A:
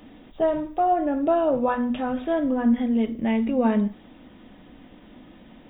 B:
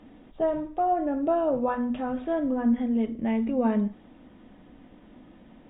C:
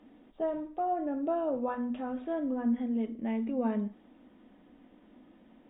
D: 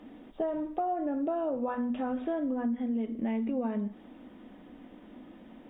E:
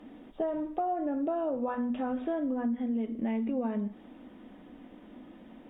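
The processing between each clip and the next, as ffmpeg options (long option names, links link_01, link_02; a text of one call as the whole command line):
ffmpeg -i in.wav -af "lowpass=frequency=1900:poles=1,volume=-3dB" out.wav
ffmpeg -i in.wav -af "lowshelf=frequency=180:width_type=q:width=1.5:gain=-6.5,volume=-7dB" out.wav
ffmpeg -i in.wav -af "acompressor=threshold=-36dB:ratio=6,volume=7.5dB" out.wav
ffmpeg -i in.wav -ar 44100 -c:a libvorbis -b:a 128k out.ogg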